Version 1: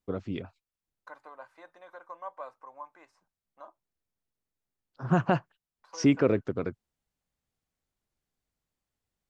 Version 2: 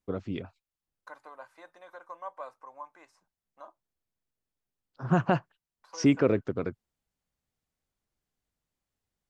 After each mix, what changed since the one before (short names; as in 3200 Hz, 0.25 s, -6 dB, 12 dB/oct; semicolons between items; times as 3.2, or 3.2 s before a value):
second voice: add high shelf 5800 Hz +9 dB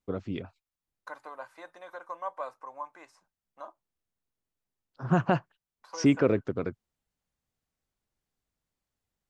second voice +4.5 dB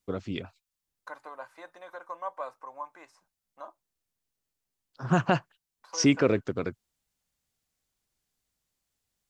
first voice: add high shelf 2500 Hz +11 dB